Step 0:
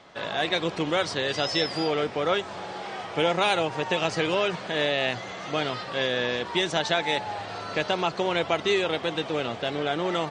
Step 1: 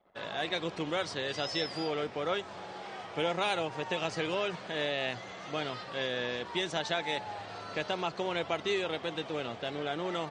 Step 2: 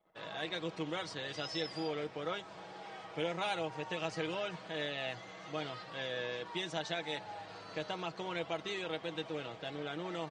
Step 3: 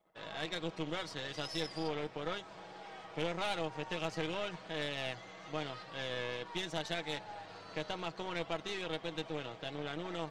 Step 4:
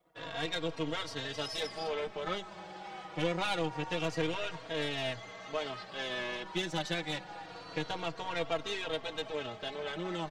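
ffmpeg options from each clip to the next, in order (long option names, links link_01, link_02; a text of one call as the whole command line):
ffmpeg -i in.wav -af "anlmdn=0.0158,volume=-7.5dB" out.wav
ffmpeg -i in.wav -af "aecho=1:1:6.3:0.51,volume=-6.5dB" out.wav
ffmpeg -i in.wav -af "areverse,acompressor=mode=upward:threshold=-47dB:ratio=2.5,areverse,aeval=exprs='(tanh(35.5*val(0)+0.8)-tanh(0.8))/35.5':channel_layout=same,volume=3.5dB" out.wav
ffmpeg -i in.wav -filter_complex "[0:a]asplit=2[link_01][link_02];[link_02]adelay=3.7,afreqshift=-0.26[link_03];[link_01][link_03]amix=inputs=2:normalize=1,volume=6.5dB" out.wav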